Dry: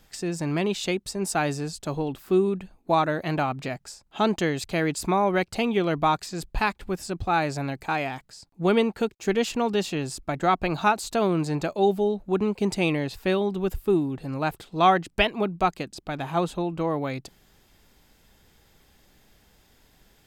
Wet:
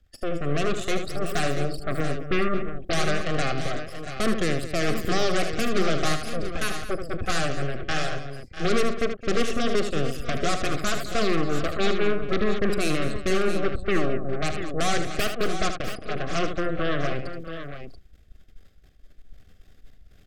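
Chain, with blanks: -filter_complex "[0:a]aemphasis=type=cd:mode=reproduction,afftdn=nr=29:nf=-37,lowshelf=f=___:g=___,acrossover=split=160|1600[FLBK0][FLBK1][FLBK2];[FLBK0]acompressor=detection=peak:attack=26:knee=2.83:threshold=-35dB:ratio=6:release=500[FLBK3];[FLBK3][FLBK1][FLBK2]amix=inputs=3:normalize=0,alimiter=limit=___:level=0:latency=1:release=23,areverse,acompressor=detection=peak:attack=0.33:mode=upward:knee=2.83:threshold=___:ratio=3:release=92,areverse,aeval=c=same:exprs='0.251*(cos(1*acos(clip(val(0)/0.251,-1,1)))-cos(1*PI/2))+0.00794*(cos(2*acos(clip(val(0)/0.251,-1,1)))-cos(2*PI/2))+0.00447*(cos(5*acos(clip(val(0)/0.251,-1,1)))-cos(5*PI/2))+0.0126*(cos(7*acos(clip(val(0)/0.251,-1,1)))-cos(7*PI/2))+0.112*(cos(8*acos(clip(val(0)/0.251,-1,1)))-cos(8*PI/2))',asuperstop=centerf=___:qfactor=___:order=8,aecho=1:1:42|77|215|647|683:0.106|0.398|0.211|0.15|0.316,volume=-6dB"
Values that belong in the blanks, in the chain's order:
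96, 11, -12dB, -25dB, 920, 3.2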